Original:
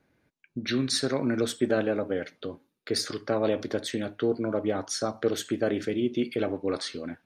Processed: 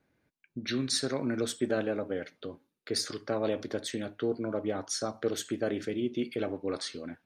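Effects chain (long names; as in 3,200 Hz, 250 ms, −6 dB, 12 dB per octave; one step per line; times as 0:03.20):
dynamic equaliser 7,500 Hz, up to +4 dB, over −47 dBFS, Q 0.87
level −4.5 dB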